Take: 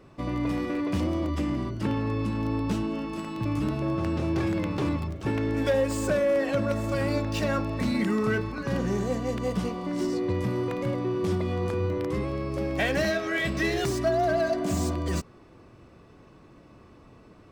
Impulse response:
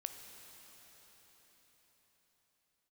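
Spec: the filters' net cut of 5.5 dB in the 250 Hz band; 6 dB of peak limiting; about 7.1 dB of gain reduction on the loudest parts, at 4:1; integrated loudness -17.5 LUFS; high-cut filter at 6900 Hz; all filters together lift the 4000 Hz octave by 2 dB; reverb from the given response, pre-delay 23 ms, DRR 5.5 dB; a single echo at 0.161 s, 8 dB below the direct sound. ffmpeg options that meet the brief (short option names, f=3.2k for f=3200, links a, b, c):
-filter_complex "[0:a]lowpass=6.9k,equalizer=f=250:t=o:g=-7.5,equalizer=f=4k:t=o:g=3,acompressor=threshold=-30dB:ratio=4,alimiter=level_in=1dB:limit=-24dB:level=0:latency=1,volume=-1dB,aecho=1:1:161:0.398,asplit=2[a][b];[1:a]atrim=start_sample=2205,adelay=23[c];[b][c]afir=irnorm=-1:irlink=0,volume=-3.5dB[d];[a][d]amix=inputs=2:normalize=0,volume=16dB"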